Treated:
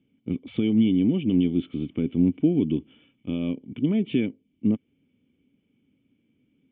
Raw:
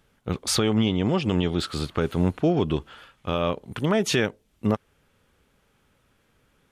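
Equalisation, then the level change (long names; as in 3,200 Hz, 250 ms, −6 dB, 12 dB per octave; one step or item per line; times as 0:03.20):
formant resonators in series i
high-pass filter 110 Hz 12 dB per octave
high-frequency loss of the air 180 metres
+9.0 dB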